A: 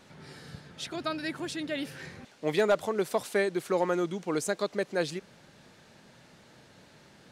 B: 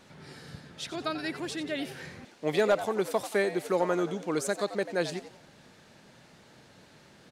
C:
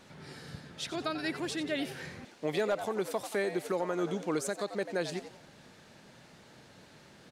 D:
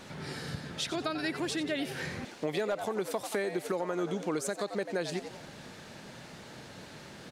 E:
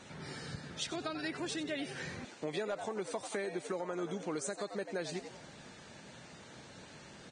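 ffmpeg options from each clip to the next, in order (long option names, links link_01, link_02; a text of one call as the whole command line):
ffmpeg -i in.wav -filter_complex "[0:a]asplit=5[link_01][link_02][link_03][link_04][link_05];[link_02]adelay=89,afreqshift=98,volume=-13dB[link_06];[link_03]adelay=178,afreqshift=196,volume=-21.2dB[link_07];[link_04]adelay=267,afreqshift=294,volume=-29.4dB[link_08];[link_05]adelay=356,afreqshift=392,volume=-37.5dB[link_09];[link_01][link_06][link_07][link_08][link_09]amix=inputs=5:normalize=0" out.wav
ffmpeg -i in.wav -af "alimiter=limit=-21.5dB:level=0:latency=1:release=208" out.wav
ffmpeg -i in.wav -af "acompressor=threshold=-41dB:ratio=2.5,volume=8dB" out.wav
ffmpeg -i in.wav -af "volume=-5.5dB" -ar 22050 -c:a libvorbis -b:a 16k out.ogg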